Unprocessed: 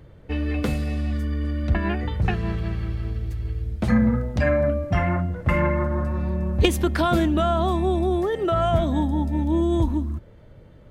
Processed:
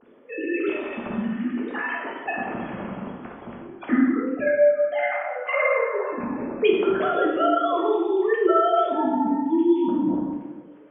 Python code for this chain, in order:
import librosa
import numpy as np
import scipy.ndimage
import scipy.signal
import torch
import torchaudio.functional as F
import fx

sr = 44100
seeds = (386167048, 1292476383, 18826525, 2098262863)

y = fx.sine_speech(x, sr)
y = fx.rev_plate(y, sr, seeds[0], rt60_s=1.3, hf_ratio=0.65, predelay_ms=0, drr_db=-3.5)
y = fx.rider(y, sr, range_db=4, speed_s=0.5)
y = F.gain(torch.from_numpy(y), -5.5).numpy()